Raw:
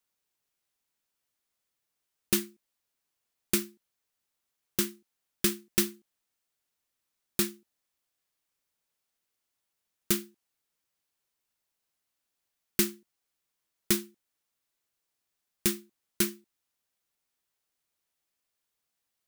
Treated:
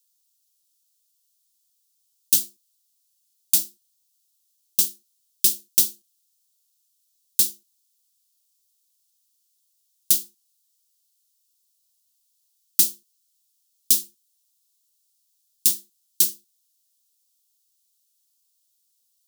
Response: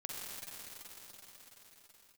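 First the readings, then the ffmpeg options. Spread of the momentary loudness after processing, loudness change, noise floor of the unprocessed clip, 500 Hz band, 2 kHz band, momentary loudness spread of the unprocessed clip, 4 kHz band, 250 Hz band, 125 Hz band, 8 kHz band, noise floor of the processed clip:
5 LU, +9.5 dB, -84 dBFS, under -10 dB, -8.5 dB, 6 LU, +6.5 dB, -12.0 dB, under -10 dB, +10.5 dB, -70 dBFS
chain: -af "aexciter=amount=6.5:drive=9.6:freq=3100,volume=0.251"

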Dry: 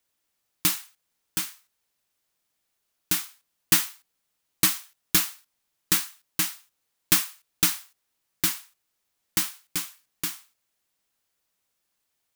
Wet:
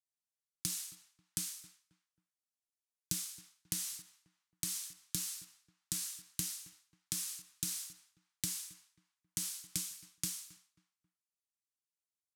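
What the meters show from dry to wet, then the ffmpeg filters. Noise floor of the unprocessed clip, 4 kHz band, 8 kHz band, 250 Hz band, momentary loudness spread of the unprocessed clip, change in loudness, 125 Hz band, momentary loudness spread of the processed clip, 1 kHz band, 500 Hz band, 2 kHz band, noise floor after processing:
-78 dBFS, -13.5 dB, -9.0 dB, -14.0 dB, 13 LU, -14.0 dB, -9.5 dB, 14 LU, -24.5 dB, under -15 dB, -21.5 dB, under -85 dBFS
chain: -filter_complex "[0:a]highpass=70,acompressor=threshold=0.0794:ratio=6,bass=f=250:g=14,treble=f=4000:g=12,bandreject=f=560:w=12,agate=range=0.0224:threshold=0.00447:ratio=3:detection=peak,lowpass=10000,highshelf=f=2100:g=9,alimiter=limit=0.282:level=0:latency=1:release=276,asplit=2[s0][s1];[s1]adelay=269,lowpass=f=1500:p=1,volume=0.0891,asplit=2[s2][s3];[s3]adelay=269,lowpass=f=1500:p=1,volume=0.39,asplit=2[s4][s5];[s5]adelay=269,lowpass=f=1500:p=1,volume=0.39[s6];[s0][s2][s4][s6]amix=inputs=4:normalize=0,acrossover=split=350[s7][s8];[s8]acompressor=threshold=0.0224:ratio=6[s9];[s7][s9]amix=inputs=2:normalize=0,volume=0.75"

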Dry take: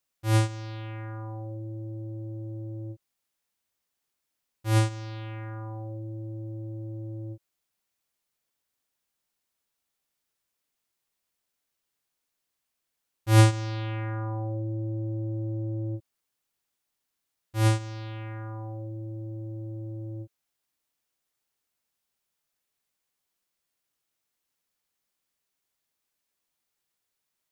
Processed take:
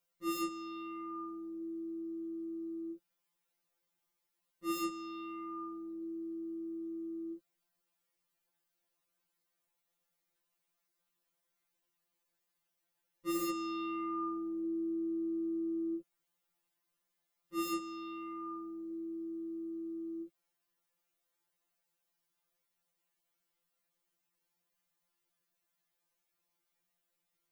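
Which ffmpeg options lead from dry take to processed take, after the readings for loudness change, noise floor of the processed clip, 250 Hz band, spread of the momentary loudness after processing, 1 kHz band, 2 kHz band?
-9.0 dB, -84 dBFS, -1.0 dB, 7 LU, -5.0 dB, -12.5 dB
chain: -af "equalizer=f=6400:w=0.33:g=-5.5,aeval=exprs='0.0562*(abs(mod(val(0)/0.0562+3,4)-2)-1)':c=same,afftfilt=real='re*2.83*eq(mod(b,8),0)':imag='im*2.83*eq(mod(b,8),0)':win_size=2048:overlap=0.75,volume=1.41"

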